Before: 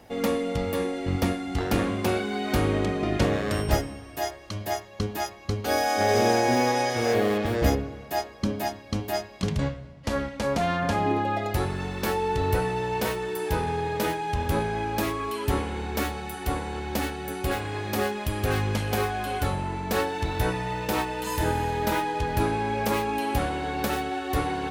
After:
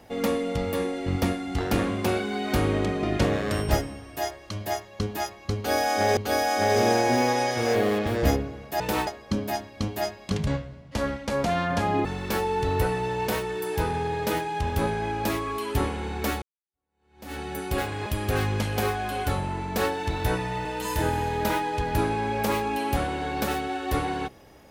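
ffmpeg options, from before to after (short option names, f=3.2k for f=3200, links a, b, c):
-filter_complex "[0:a]asplit=8[a][b][c][d][e][f][g][h];[a]atrim=end=6.172[i];[b]atrim=start=5.558:end=8.192[j];[c]atrim=start=20.798:end=21.072[k];[d]atrim=start=8.188:end=11.172[l];[e]atrim=start=11.778:end=16.15,asetpts=PTS-STARTPTS,afade=t=out:st=4.368:d=0.004:c=hsin[m];[f]atrim=start=16.15:end=17.792,asetpts=PTS-STARTPTS,afade=t=in:d=0.97:c=exp[n];[g]atrim=start=18.208:end=20.802[o];[h]atrim=start=21.068[p];[i][j]acrossfade=d=0.004:c1=hsin:c2=hsin[q];[q][k]acrossfade=d=0.004:c1=hsin:c2=hsin[r];[r][l]acrossfade=d=0.004:c1=hsin:c2=hsin[s];[m][n]concat=n=2:v=0:a=1[t];[s][t]acrossfade=d=0.004:c1=hsin:c2=hsin[u];[u][o]acrossfade=d=0.004:c1=hsin:c2=hsin[v];[v][p]acrossfade=d=0.004:c1=hsin:c2=hsin"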